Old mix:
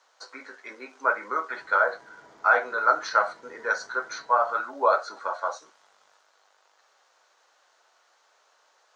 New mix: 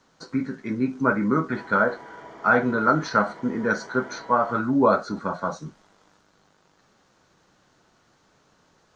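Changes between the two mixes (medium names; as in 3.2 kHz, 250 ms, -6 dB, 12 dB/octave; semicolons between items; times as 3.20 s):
speech: remove high-pass 560 Hz 24 dB/octave; background +11.0 dB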